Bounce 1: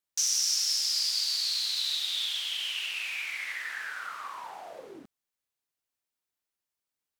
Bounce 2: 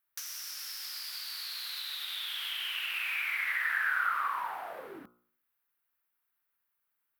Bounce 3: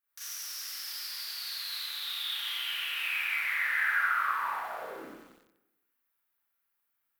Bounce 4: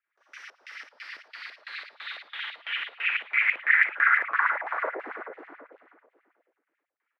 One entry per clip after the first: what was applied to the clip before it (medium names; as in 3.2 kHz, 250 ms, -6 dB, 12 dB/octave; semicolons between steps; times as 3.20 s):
de-hum 60.13 Hz, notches 24; compression, threshold -33 dBFS, peak gain reduction 9 dB; FFT filter 630 Hz 0 dB, 1.4 kHz +11 dB, 6.9 kHz -11 dB, 13 kHz +10 dB
Schroeder reverb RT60 1 s, combs from 27 ms, DRR -9 dB; bit-crushed delay 91 ms, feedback 80%, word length 7-bit, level -14 dB; trim -8 dB
LFO low-pass square 3 Hz 600–2000 Hz; feedback delay 390 ms, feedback 29%, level -7 dB; LFO high-pass sine 9.2 Hz 290–2700 Hz